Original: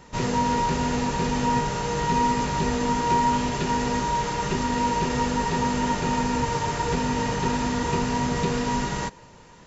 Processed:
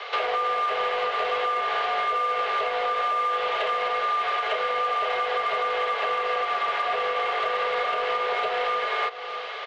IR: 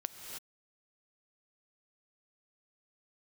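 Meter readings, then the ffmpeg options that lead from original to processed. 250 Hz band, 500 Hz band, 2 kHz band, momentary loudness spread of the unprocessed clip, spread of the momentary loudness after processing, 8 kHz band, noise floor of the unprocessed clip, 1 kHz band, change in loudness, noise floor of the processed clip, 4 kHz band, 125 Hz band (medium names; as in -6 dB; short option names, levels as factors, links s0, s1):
under -25 dB, +1.5 dB, +4.0 dB, 3 LU, 1 LU, no reading, -49 dBFS, 0.0 dB, -0.5 dB, -34 dBFS, +1.5 dB, under -30 dB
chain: -filter_complex "[0:a]highpass=f=200:t=q:w=0.5412,highpass=f=200:t=q:w=1.307,lowpass=f=3500:t=q:w=0.5176,lowpass=f=3500:t=q:w=0.7071,lowpass=f=3500:t=q:w=1.932,afreqshift=250,crystalizer=i=6.5:c=0,acrossover=split=2700[s0][s1];[s1]acompressor=threshold=0.00891:ratio=4:attack=1:release=60[s2];[s0][s2]amix=inputs=2:normalize=0,asplit=2[s3][s4];[s4]asoftclip=type=tanh:threshold=0.0562,volume=0.447[s5];[s3][s5]amix=inputs=2:normalize=0,aecho=1:1:609:0.1,alimiter=limit=0.168:level=0:latency=1:release=224,acompressor=threshold=0.0224:ratio=3,volume=2.24"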